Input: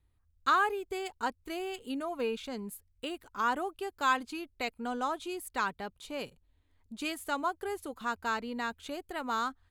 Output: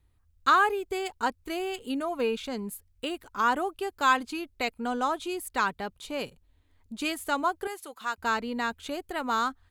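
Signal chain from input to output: 7.67–8.18 HPF 1100 Hz 6 dB/oct; gain +5 dB

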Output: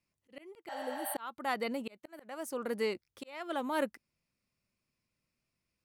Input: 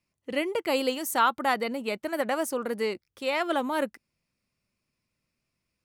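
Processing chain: auto swell 0.545 s; spectral repair 0.71–1.13, 580–8200 Hz after; gain -4 dB

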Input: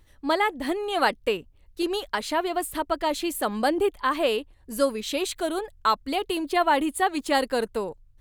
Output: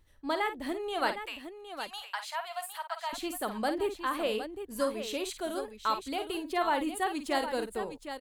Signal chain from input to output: 1.25–3.13 elliptic high-pass 730 Hz, stop band 70 dB; tapped delay 51/762 ms -9.5/-9.5 dB; gain -8 dB

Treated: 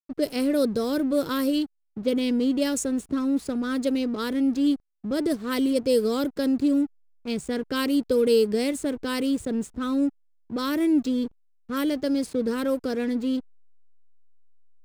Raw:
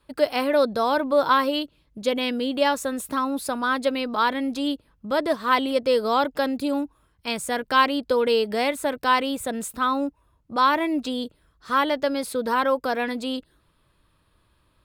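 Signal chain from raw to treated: low-pass opened by the level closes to 1500 Hz, open at -16.5 dBFS; EQ curve 420 Hz 0 dB, 890 Hz -25 dB, 1300 Hz -15 dB, 3700 Hz -10 dB, 7100 Hz +7 dB; backlash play -42 dBFS; gain +4.5 dB

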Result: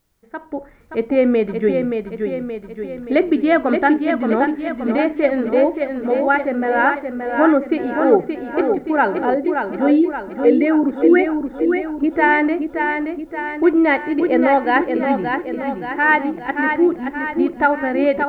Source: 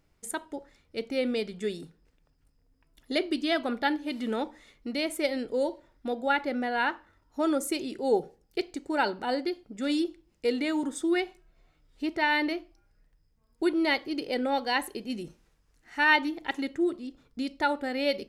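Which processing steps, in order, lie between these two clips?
9.34–12.13 formant sharpening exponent 1.5; LPF 2000 Hz 24 dB/oct; AGC gain up to 17 dB; added noise white -71 dBFS; lo-fi delay 0.575 s, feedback 55%, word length 10-bit, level -5.5 dB; gain -2 dB

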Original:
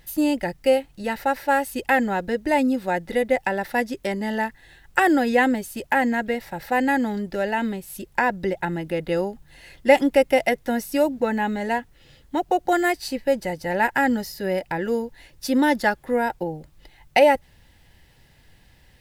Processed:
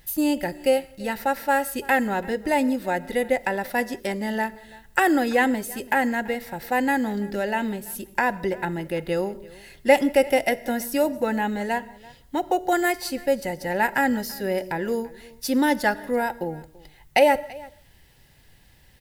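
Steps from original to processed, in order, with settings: high shelf 7700 Hz +7.5 dB; echo 0.335 s -22 dB; on a send at -16 dB: reverb, pre-delay 3 ms; on the sum: gain -1.5 dB

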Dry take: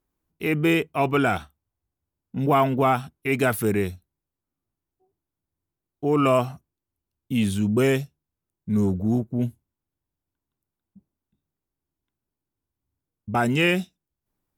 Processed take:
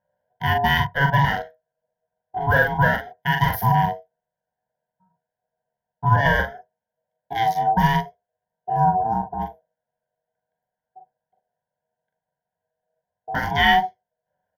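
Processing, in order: Wiener smoothing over 9 samples; ripple EQ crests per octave 0.8, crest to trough 17 dB; in parallel at -2 dB: limiter -12 dBFS, peak gain reduction 7 dB; on the sum: ring modulator 560 Hz; fixed phaser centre 1800 Hz, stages 8; doubler 42 ms -5 dB; on a send at -20.5 dB: reverb, pre-delay 4 ms

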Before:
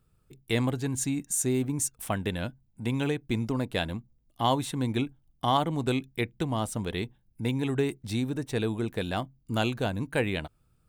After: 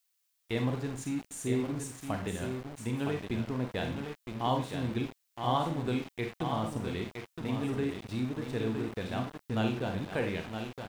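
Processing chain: 7.04–7.89 notches 60/120/180/240/300/360/420 Hz; on a send: echo 0.965 s -6.5 dB; on the sum: Schroeder reverb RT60 0.37 s, combs from 32 ms, DRR 4 dB; sample gate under -33.5 dBFS; added noise violet -59 dBFS; LPF 2800 Hz 6 dB/oct; gain -5.5 dB

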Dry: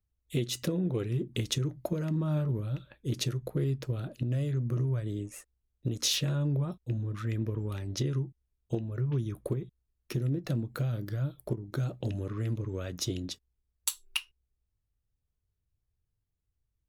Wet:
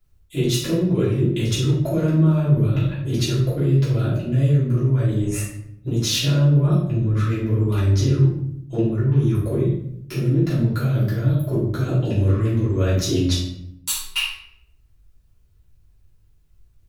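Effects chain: reverse; compressor, threshold -37 dBFS, peak gain reduction 12.5 dB; reverse; shoebox room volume 150 m³, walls mixed, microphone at 3.1 m; gain +8 dB

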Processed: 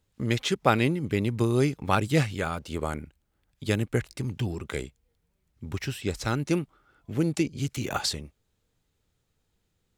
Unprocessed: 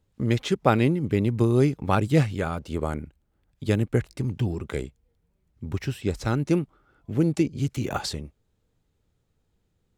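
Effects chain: tilt shelf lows -4 dB, about 1100 Hz

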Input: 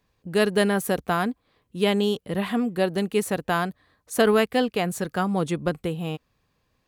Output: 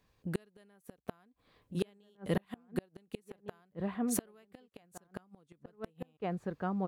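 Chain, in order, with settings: outdoor echo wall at 250 m, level -7 dB; flipped gate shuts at -16 dBFS, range -39 dB; gain -2 dB

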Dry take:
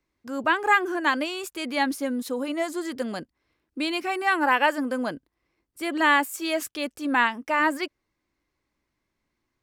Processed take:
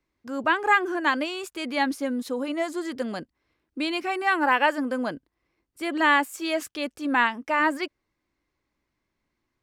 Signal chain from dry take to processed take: high shelf 9700 Hz -9.5 dB

